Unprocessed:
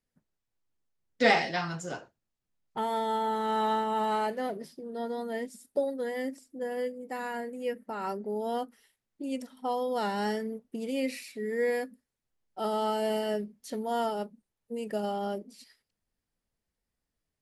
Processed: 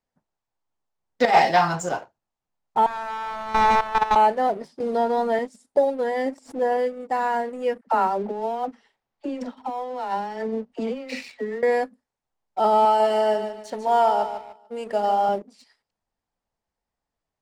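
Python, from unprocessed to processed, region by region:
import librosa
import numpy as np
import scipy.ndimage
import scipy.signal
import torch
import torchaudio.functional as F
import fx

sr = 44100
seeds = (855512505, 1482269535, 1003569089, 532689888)

y = fx.chain(x, sr, fx.peak_eq(hz=7900.0, db=7.0, octaves=0.38),
    fx.over_compress(threshold_db=-25.0, ratio=-0.5), at=(1.25, 1.89))
y = fx.chain(y, sr, fx.self_delay(depth_ms=0.93),
    fx.riaa(side='playback'),
    fx.level_steps(step_db=14), at=(2.86, 4.16))
y = fx.chain(y, sr, fx.leveller(passes=1),
    fx.band_squash(depth_pct=70), at=(4.8, 5.39))
y = fx.chain(y, sr, fx.peak_eq(hz=820.0, db=4.0, octaves=2.5),
    fx.pre_swell(db_per_s=130.0), at=(6.26, 6.77))
y = fx.chain(y, sr, fx.lowpass(hz=5200.0, slope=12),
    fx.over_compress(threshold_db=-35.0, ratio=-0.5),
    fx.dispersion(late='lows', ms=62.0, hz=530.0), at=(7.81, 11.63))
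y = fx.chain(y, sr, fx.low_shelf(hz=260.0, db=-11.5),
    fx.echo_feedback(ms=148, feedback_pct=36, wet_db=-9.0), at=(12.85, 15.29))
y = scipy.signal.sosfilt(scipy.signal.butter(4, 8600.0, 'lowpass', fs=sr, output='sos'), y)
y = fx.peak_eq(y, sr, hz=840.0, db=12.0, octaves=1.2)
y = fx.leveller(y, sr, passes=1)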